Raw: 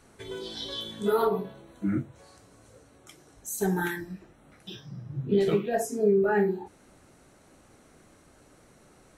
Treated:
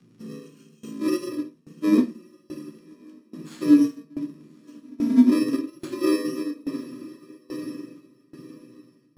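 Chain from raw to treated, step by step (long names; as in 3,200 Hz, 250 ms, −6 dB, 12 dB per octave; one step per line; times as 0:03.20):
samples in bit-reversed order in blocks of 64 samples
feedback delay with all-pass diffusion 1,245 ms, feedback 43%, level −12.5 dB
in parallel at 0 dB: brickwall limiter −25 dBFS, peak gain reduction 11.5 dB
on the sum: frequency shifter +110 Hz
low shelf with overshoot 380 Hz +13.5 dB, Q 1.5
surface crackle 58 per second −33 dBFS
high-frequency loss of the air 70 metres
rectangular room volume 49 cubic metres, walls mixed, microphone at 0.43 metres
shaped tremolo saw down 1.2 Hz, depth 90%
expander for the loud parts 1.5 to 1, over −39 dBFS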